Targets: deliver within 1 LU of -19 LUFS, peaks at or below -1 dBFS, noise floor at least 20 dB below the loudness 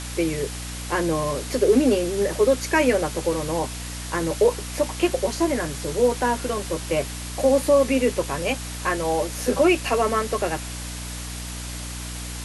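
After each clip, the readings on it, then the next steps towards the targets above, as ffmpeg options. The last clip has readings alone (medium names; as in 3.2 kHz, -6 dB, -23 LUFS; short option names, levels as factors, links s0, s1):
hum 60 Hz; highest harmonic 300 Hz; hum level -32 dBFS; noise floor -33 dBFS; noise floor target -44 dBFS; loudness -23.5 LUFS; peak level -7.5 dBFS; loudness target -19.0 LUFS
-> -af "bandreject=f=60:t=h:w=6,bandreject=f=120:t=h:w=6,bandreject=f=180:t=h:w=6,bandreject=f=240:t=h:w=6,bandreject=f=300:t=h:w=6"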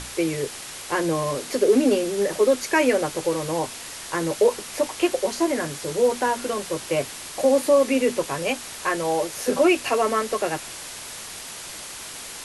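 hum not found; noise floor -37 dBFS; noise floor target -43 dBFS
-> -af "afftdn=nr=6:nf=-37"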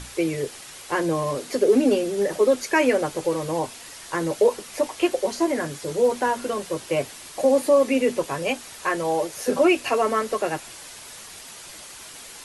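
noise floor -42 dBFS; noise floor target -43 dBFS
-> -af "afftdn=nr=6:nf=-42"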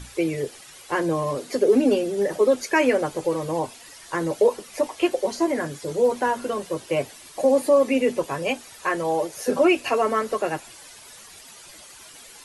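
noise floor -46 dBFS; loudness -23.5 LUFS; peak level -7.5 dBFS; loudness target -19.0 LUFS
-> -af "volume=1.68"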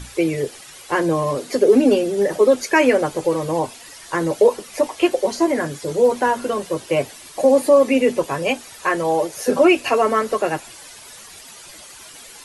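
loudness -19.0 LUFS; peak level -3.0 dBFS; noise floor -41 dBFS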